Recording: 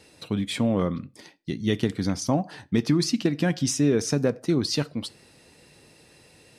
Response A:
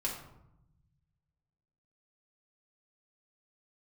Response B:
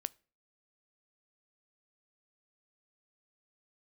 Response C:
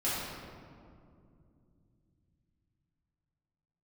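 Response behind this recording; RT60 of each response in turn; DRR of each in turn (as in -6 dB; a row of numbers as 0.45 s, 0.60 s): B; 0.85 s, 0.40 s, 2.4 s; -3.5 dB, 18.5 dB, -10.0 dB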